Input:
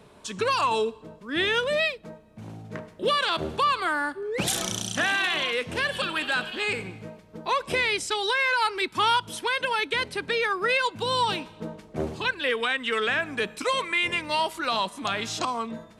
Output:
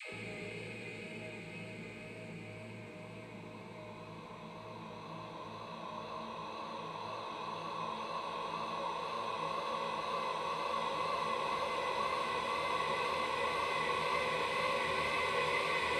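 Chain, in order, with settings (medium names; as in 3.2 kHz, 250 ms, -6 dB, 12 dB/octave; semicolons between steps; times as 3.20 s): Paulstretch 23×, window 1.00 s, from 6.97 s; vibrato 2 Hz 27 cents; phase dispersion lows, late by 139 ms, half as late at 400 Hz; trim -8 dB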